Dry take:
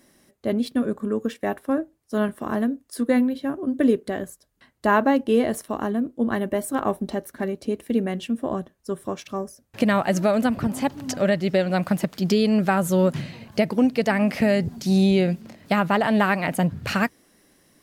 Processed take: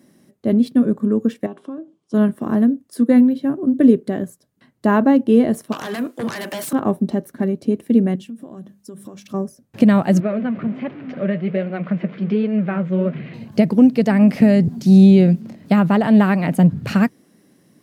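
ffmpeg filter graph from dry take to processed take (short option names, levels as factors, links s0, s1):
-filter_complex "[0:a]asettb=1/sr,asplit=3[s0][s1][s2];[s0]atrim=end=1.464[s3];[s1]atrim=start=1.46:end=2.14,asetpts=PTS-STARTPTS,afade=t=in:d=0.004:c=qsin,afade=t=out:st=0.676:d=0.004:c=qsin,acompressor=threshold=0.0178:ratio=5:attack=3.2:release=140:knee=1:detection=peak,highpass=180,equalizer=f=180:t=q:w=4:g=5,equalizer=f=380:t=q:w=4:g=5,equalizer=f=1100:t=q:w=4:g=7,equalizer=f=1800:t=q:w=4:g=-7,equalizer=f=3200:t=q:w=4:g=10,lowpass=f=8400:w=0.5412,lowpass=f=8400:w=1.3066[s4];[s2]atrim=start=2.136[s5];[s3][s4]acrossfade=d=0.004:c1=hsin:c2=qsin[s6];[s6][s5]acrossfade=d=0.004:c1=qsin:c2=hsin,asettb=1/sr,asplit=3[s7][s8][s9];[s7]atrim=end=5.724[s10];[s8]atrim=start=5.72:end=6.73,asetpts=PTS-STARTPTS,afade=t=in:d=0.004:c=qsin,afade=t=out:st=1.006:d=0.004:c=qsin,highpass=1200,acompressor=threshold=0.01:ratio=5:attack=3.2:release=140:knee=1:detection=peak,aeval=exprs='0.0631*sin(PI/2*8.91*val(0)/0.0631)':c=same[s11];[s9]atrim=start=6.726[s12];[s10][s11]acrossfade=d=0.004:c1=hsin:c2=qsin[s13];[s13][s12]acrossfade=d=0.004:c1=qsin:c2=hsin,asettb=1/sr,asplit=3[s14][s15][s16];[s14]atrim=end=8.154[s17];[s15]atrim=start=8.15:end=9.34,asetpts=PTS-STARTPTS,afade=t=in:d=0.004:c=qsin,afade=t=out:st=1.186:d=0.004:c=qsin,highshelf=f=2800:g=9.5,bandreject=f=50:t=h:w=6,bandreject=f=100:t=h:w=6,bandreject=f=150:t=h:w=6,bandreject=f=200:t=h:w=6,bandreject=f=250:t=h:w=6,acompressor=threshold=0.0126:ratio=8:attack=3.2:release=140:knee=1:detection=peak[s18];[s16]atrim=start=9.336[s19];[s17][s18]acrossfade=d=0.004:c1=hsin:c2=qsin[s20];[s20][s19]acrossfade=d=0.004:c1=qsin:c2=hsin,asettb=1/sr,asplit=3[s21][s22][s23];[s21]atrim=end=10.204[s24];[s22]atrim=start=10.2:end=13.34,asetpts=PTS-STARTPTS,afade=t=in:d=0.004:c=qsin,afade=t=out:st=3.136:d=0.004:c=qsin,aeval=exprs='val(0)+0.5*0.0355*sgn(val(0))':c=same,highpass=210,equalizer=f=280:t=q:w=4:g=-8,equalizer=f=860:t=q:w=4:g=-10,equalizer=f=2200:t=q:w=4:g=4,lowpass=f=2800:w=0.5412,lowpass=f=2800:w=1.3066,flanger=delay=2.5:depth=8.2:regen=-61:speed=1.3:shape=sinusoidal[s25];[s23]atrim=start=13.336[s26];[s24][s25]acrossfade=d=0.004:c1=hsin:c2=qsin[s27];[s27][s26]acrossfade=d=0.004:c1=qsin:c2=hsin,highpass=110,equalizer=f=170:t=o:w=2.6:g=13,volume=0.75"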